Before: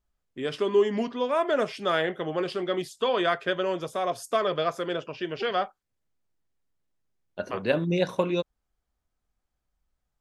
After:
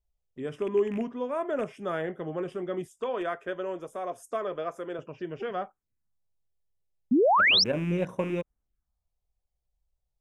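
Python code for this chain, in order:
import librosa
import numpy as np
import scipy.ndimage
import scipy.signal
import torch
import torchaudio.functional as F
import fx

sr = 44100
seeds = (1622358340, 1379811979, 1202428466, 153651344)

y = fx.rattle_buzz(x, sr, strikes_db=-33.0, level_db=-21.0)
y = fx.low_shelf(y, sr, hz=400.0, db=7.5)
y = fx.env_phaser(y, sr, low_hz=240.0, high_hz=4300.0, full_db=-29.5)
y = fx.peak_eq(y, sr, hz=130.0, db=-12.5, octaves=1.2, at=(2.86, 4.99))
y = fx.spec_paint(y, sr, seeds[0], shape='rise', start_s=7.11, length_s=0.53, low_hz=220.0, high_hz=5800.0, level_db=-13.0)
y = y * 10.0 ** (-7.5 / 20.0)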